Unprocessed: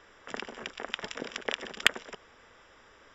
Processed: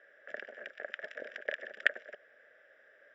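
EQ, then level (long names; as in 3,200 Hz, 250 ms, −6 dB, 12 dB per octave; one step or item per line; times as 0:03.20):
pair of resonant band-passes 1,000 Hz, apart 1.5 octaves
+3.5 dB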